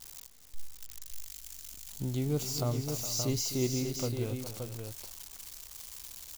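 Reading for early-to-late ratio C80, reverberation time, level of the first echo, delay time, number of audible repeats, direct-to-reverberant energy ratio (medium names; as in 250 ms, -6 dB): no reverb, no reverb, -12.5 dB, 256 ms, 3, no reverb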